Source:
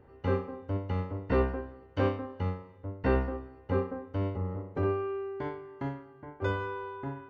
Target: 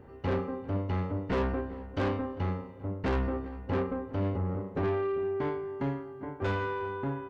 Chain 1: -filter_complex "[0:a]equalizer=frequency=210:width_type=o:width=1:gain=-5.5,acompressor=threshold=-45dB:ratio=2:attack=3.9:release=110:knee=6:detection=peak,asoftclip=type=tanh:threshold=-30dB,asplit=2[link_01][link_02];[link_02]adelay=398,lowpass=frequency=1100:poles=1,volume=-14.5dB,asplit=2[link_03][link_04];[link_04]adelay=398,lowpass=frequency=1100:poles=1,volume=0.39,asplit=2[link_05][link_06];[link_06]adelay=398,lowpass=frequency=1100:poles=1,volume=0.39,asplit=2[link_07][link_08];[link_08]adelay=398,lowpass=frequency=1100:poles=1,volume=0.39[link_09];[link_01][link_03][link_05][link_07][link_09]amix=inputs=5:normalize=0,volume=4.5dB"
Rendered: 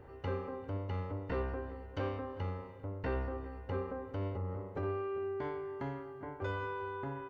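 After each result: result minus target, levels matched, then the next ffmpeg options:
downward compressor: peak gain reduction +13 dB; 250 Hz band −3.0 dB
-filter_complex "[0:a]equalizer=frequency=210:width_type=o:width=1:gain=-5.5,asoftclip=type=tanh:threshold=-30dB,asplit=2[link_01][link_02];[link_02]adelay=398,lowpass=frequency=1100:poles=1,volume=-14.5dB,asplit=2[link_03][link_04];[link_04]adelay=398,lowpass=frequency=1100:poles=1,volume=0.39,asplit=2[link_05][link_06];[link_06]adelay=398,lowpass=frequency=1100:poles=1,volume=0.39,asplit=2[link_07][link_08];[link_08]adelay=398,lowpass=frequency=1100:poles=1,volume=0.39[link_09];[link_01][link_03][link_05][link_07][link_09]amix=inputs=5:normalize=0,volume=4.5dB"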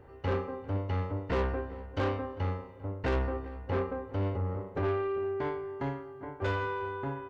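250 Hz band −3.0 dB
-filter_complex "[0:a]equalizer=frequency=210:width_type=o:width=1:gain=4,asoftclip=type=tanh:threshold=-30dB,asplit=2[link_01][link_02];[link_02]adelay=398,lowpass=frequency=1100:poles=1,volume=-14.5dB,asplit=2[link_03][link_04];[link_04]adelay=398,lowpass=frequency=1100:poles=1,volume=0.39,asplit=2[link_05][link_06];[link_06]adelay=398,lowpass=frequency=1100:poles=1,volume=0.39,asplit=2[link_07][link_08];[link_08]adelay=398,lowpass=frequency=1100:poles=1,volume=0.39[link_09];[link_01][link_03][link_05][link_07][link_09]amix=inputs=5:normalize=0,volume=4.5dB"

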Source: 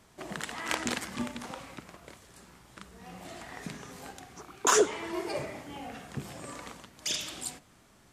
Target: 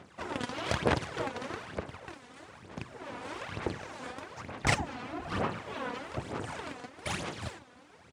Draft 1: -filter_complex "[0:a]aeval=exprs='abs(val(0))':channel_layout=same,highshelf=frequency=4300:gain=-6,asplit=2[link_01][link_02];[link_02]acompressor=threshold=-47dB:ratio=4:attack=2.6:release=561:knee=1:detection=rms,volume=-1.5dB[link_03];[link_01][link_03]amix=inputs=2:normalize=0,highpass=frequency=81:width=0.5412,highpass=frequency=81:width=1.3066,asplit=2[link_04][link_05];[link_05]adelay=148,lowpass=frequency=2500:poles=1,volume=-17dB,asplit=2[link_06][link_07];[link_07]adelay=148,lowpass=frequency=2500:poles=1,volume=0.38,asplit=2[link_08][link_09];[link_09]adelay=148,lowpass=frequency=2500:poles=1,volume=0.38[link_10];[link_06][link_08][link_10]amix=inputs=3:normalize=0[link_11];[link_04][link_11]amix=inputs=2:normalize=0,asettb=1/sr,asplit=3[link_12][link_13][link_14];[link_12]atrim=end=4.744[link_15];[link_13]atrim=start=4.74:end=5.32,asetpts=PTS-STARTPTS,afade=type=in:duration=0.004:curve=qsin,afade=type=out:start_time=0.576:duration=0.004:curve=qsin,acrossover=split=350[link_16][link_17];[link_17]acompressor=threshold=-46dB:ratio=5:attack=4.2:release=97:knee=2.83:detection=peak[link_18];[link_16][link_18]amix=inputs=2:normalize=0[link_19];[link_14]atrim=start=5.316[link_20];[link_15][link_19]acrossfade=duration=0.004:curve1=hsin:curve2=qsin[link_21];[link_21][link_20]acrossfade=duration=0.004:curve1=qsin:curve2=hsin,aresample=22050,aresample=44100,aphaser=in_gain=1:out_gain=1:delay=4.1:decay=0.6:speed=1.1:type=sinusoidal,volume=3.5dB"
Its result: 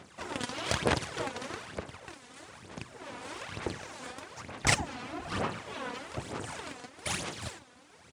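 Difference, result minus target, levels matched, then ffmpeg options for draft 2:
downward compressor: peak gain reduction +7.5 dB; 8,000 Hz band +6.5 dB
-filter_complex "[0:a]aeval=exprs='abs(val(0))':channel_layout=same,highshelf=frequency=4300:gain=-17,asplit=2[link_01][link_02];[link_02]acompressor=threshold=-37.5dB:ratio=4:attack=2.6:release=561:knee=1:detection=rms,volume=-1.5dB[link_03];[link_01][link_03]amix=inputs=2:normalize=0,highpass=frequency=81:width=0.5412,highpass=frequency=81:width=1.3066,asplit=2[link_04][link_05];[link_05]adelay=148,lowpass=frequency=2500:poles=1,volume=-17dB,asplit=2[link_06][link_07];[link_07]adelay=148,lowpass=frequency=2500:poles=1,volume=0.38,asplit=2[link_08][link_09];[link_09]adelay=148,lowpass=frequency=2500:poles=1,volume=0.38[link_10];[link_06][link_08][link_10]amix=inputs=3:normalize=0[link_11];[link_04][link_11]amix=inputs=2:normalize=0,asettb=1/sr,asplit=3[link_12][link_13][link_14];[link_12]atrim=end=4.744[link_15];[link_13]atrim=start=4.74:end=5.32,asetpts=PTS-STARTPTS,afade=type=in:duration=0.004:curve=qsin,afade=type=out:start_time=0.576:duration=0.004:curve=qsin,acrossover=split=350[link_16][link_17];[link_17]acompressor=threshold=-46dB:ratio=5:attack=4.2:release=97:knee=2.83:detection=peak[link_18];[link_16][link_18]amix=inputs=2:normalize=0[link_19];[link_14]atrim=start=5.316[link_20];[link_15][link_19]acrossfade=duration=0.004:curve1=hsin:curve2=qsin[link_21];[link_21][link_20]acrossfade=duration=0.004:curve1=qsin:curve2=hsin,aresample=22050,aresample=44100,aphaser=in_gain=1:out_gain=1:delay=4.1:decay=0.6:speed=1.1:type=sinusoidal,volume=3.5dB"

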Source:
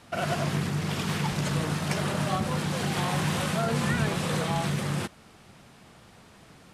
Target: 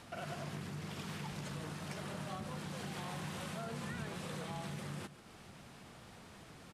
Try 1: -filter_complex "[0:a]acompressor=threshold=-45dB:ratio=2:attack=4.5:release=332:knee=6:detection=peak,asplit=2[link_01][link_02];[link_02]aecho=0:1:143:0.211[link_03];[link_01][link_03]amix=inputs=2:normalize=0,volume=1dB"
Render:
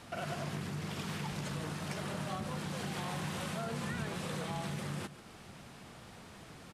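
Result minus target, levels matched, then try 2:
downward compressor: peak gain reduction −4.5 dB
-filter_complex "[0:a]acompressor=threshold=-54dB:ratio=2:attack=4.5:release=332:knee=6:detection=peak,asplit=2[link_01][link_02];[link_02]aecho=0:1:143:0.211[link_03];[link_01][link_03]amix=inputs=2:normalize=0,volume=1dB"

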